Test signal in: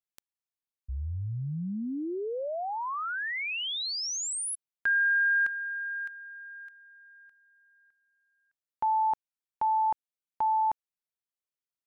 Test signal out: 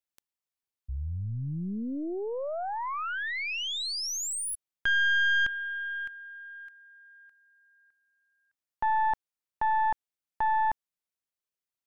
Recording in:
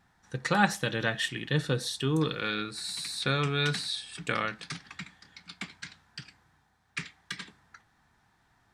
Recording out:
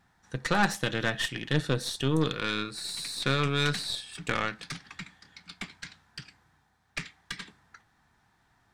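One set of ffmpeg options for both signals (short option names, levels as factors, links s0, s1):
-af "aeval=exprs='0.473*(cos(1*acos(clip(val(0)/0.473,-1,1)))-cos(1*PI/2))+0.0531*(cos(8*acos(clip(val(0)/0.473,-1,1)))-cos(8*PI/2))':c=same,asoftclip=type=tanh:threshold=0.266"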